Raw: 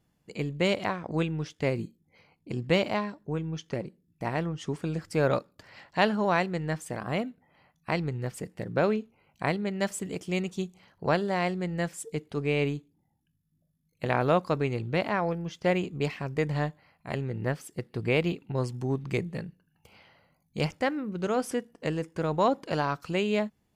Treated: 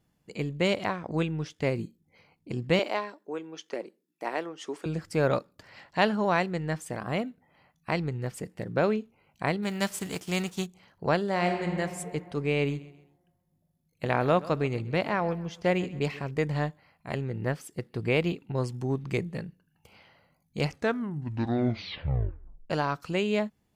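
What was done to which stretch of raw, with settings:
2.79–4.86 s: high-pass 300 Hz 24 dB/octave
9.62–10.65 s: formants flattened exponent 0.6
11.30–11.74 s: reverb throw, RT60 2.2 s, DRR 3 dB
12.55–16.31 s: feedback delay 132 ms, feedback 36%, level -18.5 dB
20.57 s: tape stop 2.13 s

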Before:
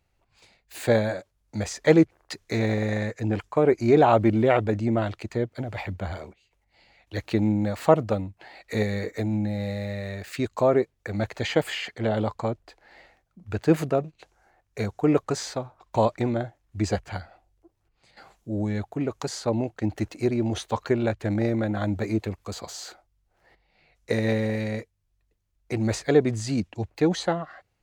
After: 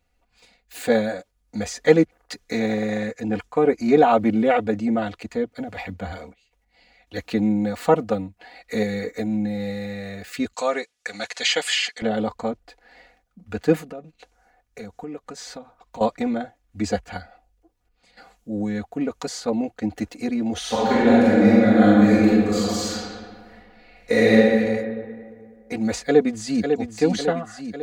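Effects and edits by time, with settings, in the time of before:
10.54–12.02 s: frequency weighting ITU-R 468
13.77–16.01 s: compression 4:1, threshold -36 dBFS
20.58–24.32 s: reverb throw, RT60 2 s, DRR -9 dB
25.99–26.73 s: echo throw 550 ms, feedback 60%, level -6 dB
whole clip: band-stop 1 kHz, Q 15; comb 4.1 ms, depth 99%; trim -1 dB

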